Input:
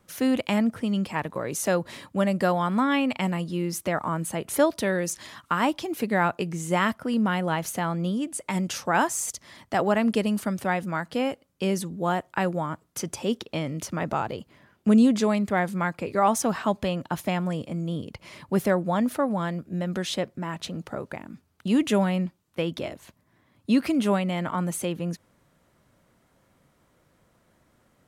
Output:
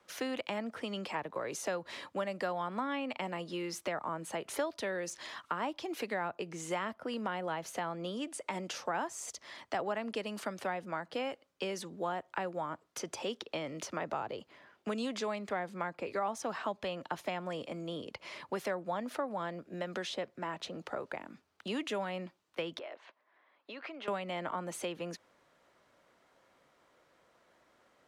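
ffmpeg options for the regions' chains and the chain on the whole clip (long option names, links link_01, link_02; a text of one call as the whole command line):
ffmpeg -i in.wav -filter_complex "[0:a]asettb=1/sr,asplit=3[link_01][link_02][link_03];[link_01]atrim=end=22.794[link_04];[link_02]atrim=start=22.79:end=24.08,asetpts=PTS-STARTPTS,afade=type=in:duration=0.004:curve=qsin,afade=type=out:start_time=1.286:duration=0.004:curve=qsin,highpass=530,lowpass=2800,acompressor=threshold=-38dB:ratio=6:attack=3.2:release=140:knee=1:detection=peak[link_05];[link_03]atrim=start=24.076[link_06];[link_04][link_05]acrossfade=duration=0.004:curve1=hsin:curve2=qsin[link_07];[link_07][link_06]acrossfade=duration=0.004:curve1=qsin:curve2=hsin,acrossover=split=340 6500:gain=0.141 1 0.224[link_08][link_09][link_10];[link_08][link_09][link_10]amix=inputs=3:normalize=0,acrossover=split=210|810[link_11][link_12][link_13];[link_11]acompressor=threshold=-48dB:ratio=4[link_14];[link_12]acompressor=threshold=-38dB:ratio=4[link_15];[link_13]acompressor=threshold=-40dB:ratio=4[link_16];[link_14][link_15][link_16]amix=inputs=3:normalize=0" out.wav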